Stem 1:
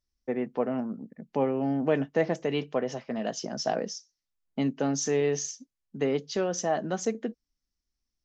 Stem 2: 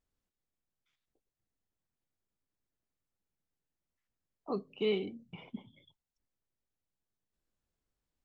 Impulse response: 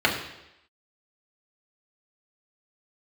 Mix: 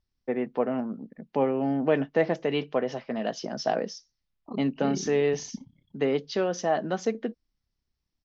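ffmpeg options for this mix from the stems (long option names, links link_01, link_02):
-filter_complex "[0:a]lowpass=frequency=5000:width=0.5412,lowpass=frequency=5000:width=1.3066,lowshelf=frequency=160:gain=-5.5,volume=2.5dB[link_01];[1:a]tiltshelf=frequency=700:gain=8,tremolo=f=33:d=0.919,aecho=1:1:1:0.51,volume=-1.5dB[link_02];[link_01][link_02]amix=inputs=2:normalize=0"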